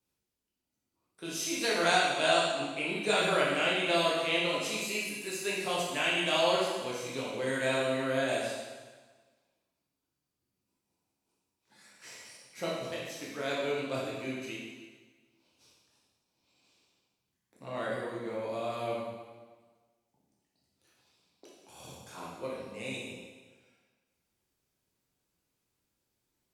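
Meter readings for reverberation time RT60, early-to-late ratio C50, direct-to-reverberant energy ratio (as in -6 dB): 1.4 s, -0.5 dB, -6.0 dB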